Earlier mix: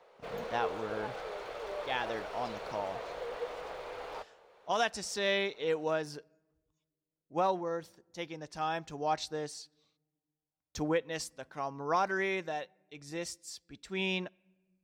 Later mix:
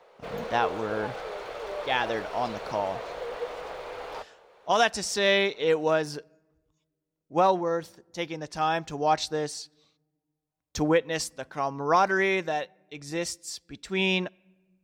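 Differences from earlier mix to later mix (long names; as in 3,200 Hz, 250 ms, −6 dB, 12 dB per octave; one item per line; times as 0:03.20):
speech +8.0 dB
background +4.5 dB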